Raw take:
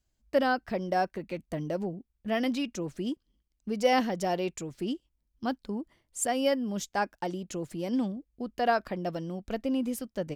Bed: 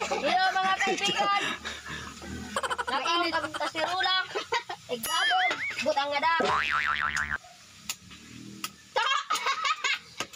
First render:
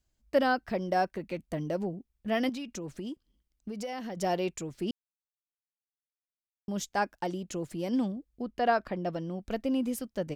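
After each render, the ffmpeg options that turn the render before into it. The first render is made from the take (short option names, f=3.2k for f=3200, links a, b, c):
-filter_complex "[0:a]asettb=1/sr,asplit=3[a][b][c];[a]atrim=end=2.494[d];[b]atrim=start=2.49:end=4.17,asetpts=PTS-STARTPTS,afade=t=in:d=0.004:c=qsin,afade=t=out:st=1.676:d=0.004:c=qsin,acompressor=threshold=-34dB:ratio=6:attack=3.2:release=140:knee=1:detection=peak[e];[c]atrim=start=4.166[f];[d][e]acrossfade=d=0.004:c1=hsin:c2=qsin[g];[g][f]acrossfade=d=0.004:c1=qsin:c2=hsin,asettb=1/sr,asplit=3[h][i][j];[h]atrim=end=8.424[k];[i]atrim=start=8.42:end=9.4,asetpts=PTS-STARTPTS,afade=t=in:d=0.004:c=qsin,afade=t=out:st=0.976:d=0.004:c=qsin,lowpass=f=3.9k:p=1[l];[j]atrim=start=9.396[m];[k][l]acrossfade=d=0.004:c1=hsin:c2=qsin[n];[n][m]acrossfade=d=0.004:c1=qsin:c2=hsin,asplit=3[o][p][q];[o]atrim=end=4.91,asetpts=PTS-STARTPTS,afade=t=out:st=4.906:d=0.004:c=hsin[r];[p]atrim=start=4.91:end=6.68,asetpts=PTS-STARTPTS,volume=0[s];[q]atrim=start=6.68,asetpts=PTS-STARTPTS,afade=t=in:d=0.004:c=hsin[t];[r][s][t]concat=n=3:v=0:a=1"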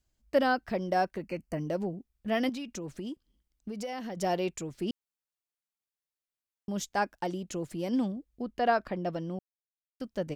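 -filter_complex "[0:a]asettb=1/sr,asplit=3[a][b][c];[a]atrim=end=1.224[d];[b]atrim=start=1.22:end=1.67,asetpts=PTS-STARTPTS,afade=t=in:d=0.004:c=qsin,afade=t=out:st=0.446:d=0.004:c=qsin,asuperstop=centerf=3600:order=20:qfactor=3.2[e];[c]atrim=start=1.666[f];[d][e]acrossfade=d=0.004:c1=hsin:c2=qsin[g];[g][f]acrossfade=d=0.004:c1=qsin:c2=hsin,asplit=3[h][i][j];[h]atrim=end=9.39,asetpts=PTS-STARTPTS,afade=t=out:st=9.386:d=0.004:c=hsin[k];[i]atrim=start=9.39:end=10,asetpts=PTS-STARTPTS,volume=0[l];[j]atrim=start=10,asetpts=PTS-STARTPTS,afade=t=in:d=0.004:c=hsin[m];[k][l][m]concat=n=3:v=0:a=1"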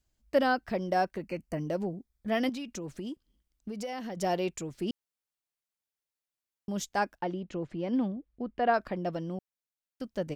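-filter_complex "[0:a]asettb=1/sr,asplit=3[a][b][c];[a]atrim=end=1.894[d];[b]atrim=start=1.89:end=2.32,asetpts=PTS-STARTPTS,afade=t=in:d=0.004:c=qsin,afade=t=out:st=0.426:d=0.004:c=qsin,asuperstop=centerf=2800:order=4:qfactor=5.1[e];[c]atrim=start=2.316[f];[d][e]acrossfade=d=0.004:c1=hsin:c2=qsin[g];[g][f]acrossfade=d=0.004:c1=qsin:c2=hsin,asettb=1/sr,asplit=3[h][i][j];[h]atrim=end=7.184[k];[i]atrim=start=7.18:end=8.74,asetpts=PTS-STARTPTS,afade=t=in:d=0.004:c=qsin,afade=t=out:st=1.556:d=0.004:c=qsin,lowpass=2.8k[l];[j]atrim=start=8.736[m];[k][l]acrossfade=d=0.004:c1=hsin:c2=qsin[n];[n][m]acrossfade=d=0.004:c1=qsin:c2=hsin"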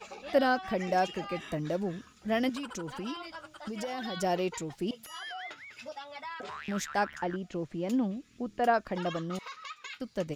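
-filter_complex "[1:a]volume=-16dB[a];[0:a][a]amix=inputs=2:normalize=0"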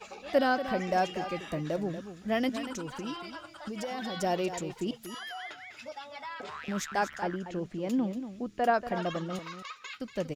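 -af "aecho=1:1:236:0.282"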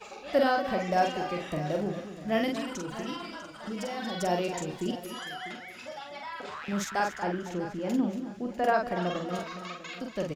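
-filter_complex "[0:a]asplit=2[a][b];[b]adelay=45,volume=-4dB[c];[a][c]amix=inputs=2:normalize=0,aecho=1:1:647|1294|1941:0.188|0.0509|0.0137"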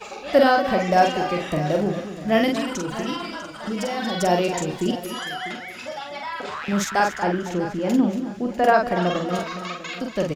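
-af "volume=8.5dB"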